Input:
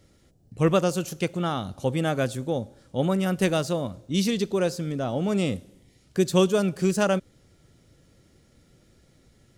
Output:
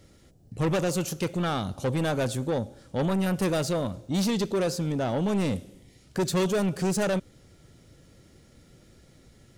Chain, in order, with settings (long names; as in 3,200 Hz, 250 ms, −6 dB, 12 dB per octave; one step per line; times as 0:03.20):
soft clipping −25 dBFS, distortion −7 dB
level +3.5 dB